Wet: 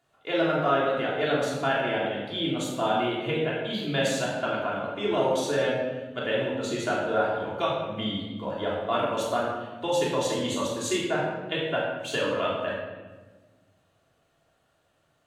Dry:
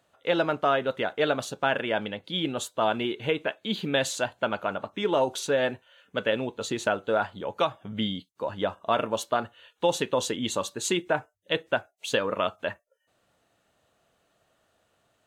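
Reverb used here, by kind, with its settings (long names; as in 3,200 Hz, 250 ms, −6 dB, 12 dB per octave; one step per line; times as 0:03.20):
rectangular room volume 990 cubic metres, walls mixed, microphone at 3.2 metres
level −6.5 dB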